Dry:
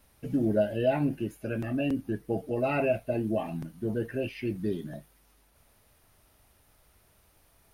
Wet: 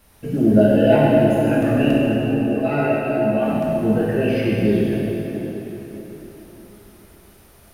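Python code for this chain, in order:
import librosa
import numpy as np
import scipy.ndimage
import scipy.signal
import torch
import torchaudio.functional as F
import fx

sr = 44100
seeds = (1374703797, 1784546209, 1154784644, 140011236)

y = fx.comb_fb(x, sr, f0_hz=72.0, decay_s=0.18, harmonics='all', damping=0.0, mix_pct=90, at=(1.97, 3.42))
y = fx.rev_plate(y, sr, seeds[0], rt60_s=4.2, hf_ratio=0.75, predelay_ms=0, drr_db=-6.0)
y = F.gain(torch.from_numpy(y), 6.5).numpy()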